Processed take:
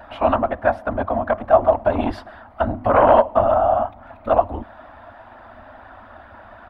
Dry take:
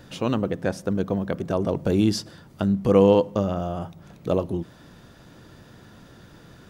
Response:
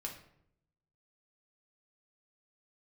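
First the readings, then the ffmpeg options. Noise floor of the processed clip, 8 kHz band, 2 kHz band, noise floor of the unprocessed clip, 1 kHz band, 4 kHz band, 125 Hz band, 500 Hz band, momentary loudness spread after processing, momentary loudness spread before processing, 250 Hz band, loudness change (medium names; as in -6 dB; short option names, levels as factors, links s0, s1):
-45 dBFS, under -20 dB, +9.5 dB, -50 dBFS, +15.0 dB, no reading, -4.0 dB, +5.5 dB, 14 LU, 14 LU, -4.5 dB, +4.5 dB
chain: -af "afftfilt=real='hypot(re,im)*cos(2*PI*random(0))':imag='hypot(re,im)*sin(2*PI*random(1))':win_size=512:overlap=0.75,aeval=exprs='0.299*(cos(1*acos(clip(val(0)/0.299,-1,1)))-cos(1*PI/2))+0.0237*(cos(2*acos(clip(val(0)/0.299,-1,1)))-cos(2*PI/2))+0.0473*(cos(5*acos(clip(val(0)/0.299,-1,1)))-cos(5*PI/2))+0.00188*(cos(6*acos(clip(val(0)/0.299,-1,1)))-cos(6*PI/2))':c=same,firequalizer=gain_entry='entry(100,0);entry(150,-26);entry(230,-1);entry(440,-11);entry(640,15);entry(1800,5);entry(6300,-28);entry(9900,-20)':delay=0.05:min_phase=1,volume=1.5"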